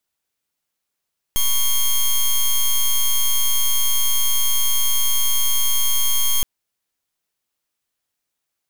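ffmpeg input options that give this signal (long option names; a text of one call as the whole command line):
ffmpeg -f lavfi -i "aevalsrc='0.15*(2*lt(mod(3230*t,1),0.09)-1)':duration=5.07:sample_rate=44100" out.wav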